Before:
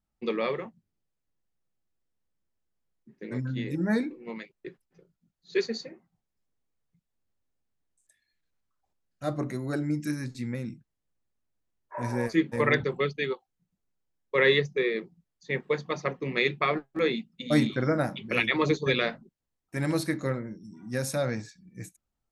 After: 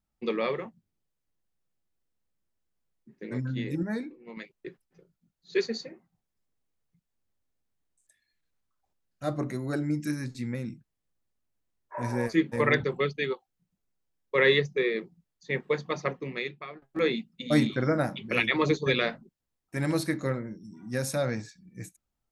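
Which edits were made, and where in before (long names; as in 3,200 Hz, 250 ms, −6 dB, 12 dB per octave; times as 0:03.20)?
0:03.83–0:04.37: clip gain −6.5 dB
0:16.10–0:16.82: fade out quadratic, to −18 dB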